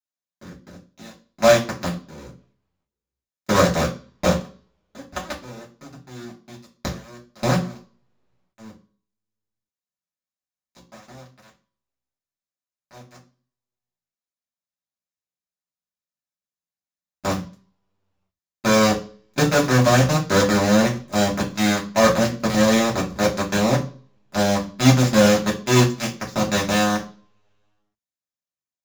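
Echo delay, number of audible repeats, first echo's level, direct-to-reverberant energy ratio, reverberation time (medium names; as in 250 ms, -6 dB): no echo, no echo, no echo, -6.0 dB, 0.40 s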